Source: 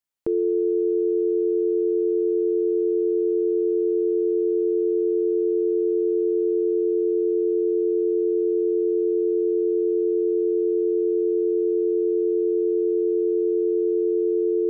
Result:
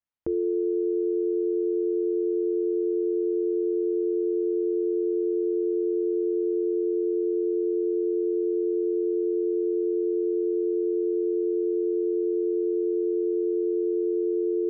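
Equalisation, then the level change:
high-frequency loss of the air 280 metres
parametric band 71 Hz +12.5 dB 0.39 octaves
notch filter 420 Hz, Q 12
−2.0 dB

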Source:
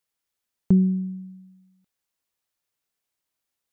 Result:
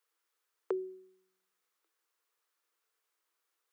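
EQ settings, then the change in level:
Chebyshev high-pass with heavy ripple 320 Hz, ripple 9 dB
+7.5 dB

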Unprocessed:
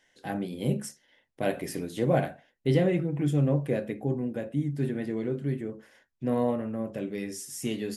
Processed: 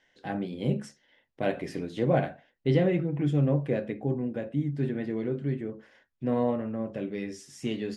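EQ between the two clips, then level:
low-pass filter 4,500 Hz 12 dB per octave
0.0 dB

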